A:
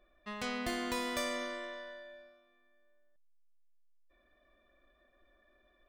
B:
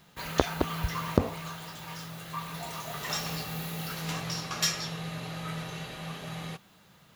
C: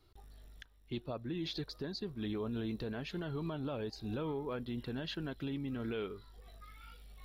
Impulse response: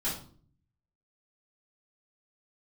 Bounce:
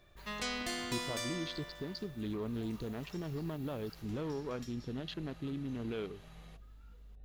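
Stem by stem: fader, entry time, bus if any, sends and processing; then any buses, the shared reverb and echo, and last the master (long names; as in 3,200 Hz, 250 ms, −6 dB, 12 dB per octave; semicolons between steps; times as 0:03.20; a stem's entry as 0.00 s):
+1.5 dB, 0.00 s, no send, soft clipping −29.5 dBFS, distortion −18 dB; parametric band 5,800 Hz +9 dB 2.5 octaves; automatic ducking −11 dB, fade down 1.75 s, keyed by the third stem
−16.0 dB, 0.00 s, no send, downward compressor 6 to 1, threshold −37 dBFS, peak gain reduction 20 dB
+0.5 dB, 0.00 s, no send, adaptive Wiener filter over 41 samples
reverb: not used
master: no processing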